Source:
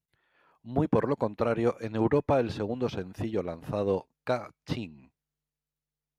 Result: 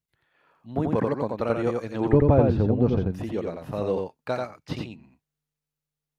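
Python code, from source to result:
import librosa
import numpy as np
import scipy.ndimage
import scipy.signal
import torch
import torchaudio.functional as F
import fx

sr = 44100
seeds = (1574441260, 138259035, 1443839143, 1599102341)

y = fx.tilt_eq(x, sr, slope=-4.0, at=(2.13, 3.11))
y = y + 10.0 ** (-3.5 / 20.0) * np.pad(y, (int(87 * sr / 1000.0), 0))[:len(y)]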